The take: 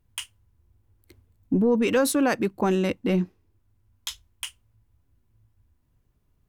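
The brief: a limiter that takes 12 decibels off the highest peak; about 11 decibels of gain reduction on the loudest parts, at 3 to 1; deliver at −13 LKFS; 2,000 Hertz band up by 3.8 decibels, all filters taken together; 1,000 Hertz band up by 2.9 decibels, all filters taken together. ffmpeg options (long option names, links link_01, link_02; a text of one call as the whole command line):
ffmpeg -i in.wav -af "equalizer=frequency=1000:width_type=o:gain=3,equalizer=frequency=2000:width_type=o:gain=4,acompressor=threshold=-32dB:ratio=3,volume=25dB,alimiter=limit=-3dB:level=0:latency=1" out.wav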